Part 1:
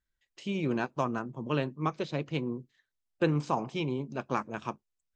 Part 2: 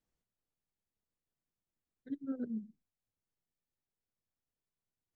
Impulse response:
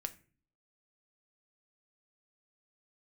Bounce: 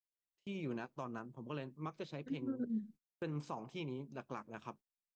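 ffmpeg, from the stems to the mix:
-filter_complex "[0:a]volume=-11dB[a];[1:a]adelay=200,volume=2dB[b];[a][b]amix=inputs=2:normalize=0,agate=range=-24dB:threshold=-55dB:ratio=16:detection=peak,alimiter=level_in=6.5dB:limit=-24dB:level=0:latency=1:release=156,volume=-6.5dB"

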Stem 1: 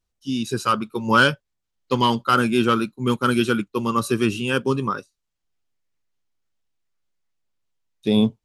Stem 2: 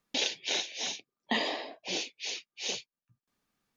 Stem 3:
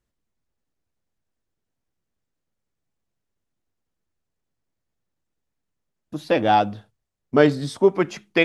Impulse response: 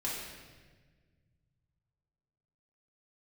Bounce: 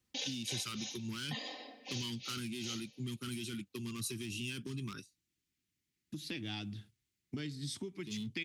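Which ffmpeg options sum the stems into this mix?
-filter_complex "[0:a]alimiter=limit=-13.5dB:level=0:latency=1:release=14,volume=18.5dB,asoftclip=hard,volume=-18.5dB,volume=-3.5dB[a];[1:a]aecho=1:1:3.9:0.92,volume=-12dB,asplit=2[b][c];[c]volume=-13.5dB[d];[2:a]volume=-1.5dB[e];[a][e]amix=inputs=2:normalize=0,firequalizer=gain_entry='entry(350,0);entry(520,-21);entry(2100,2)':delay=0.05:min_phase=1,acompressor=threshold=-34dB:ratio=3,volume=0dB[f];[3:a]atrim=start_sample=2205[g];[d][g]afir=irnorm=-1:irlink=0[h];[b][f][h]amix=inputs=3:normalize=0,highpass=69,acrossover=split=140|3000[i][j][k];[j]acompressor=threshold=-47dB:ratio=2.5[l];[i][l][k]amix=inputs=3:normalize=0"

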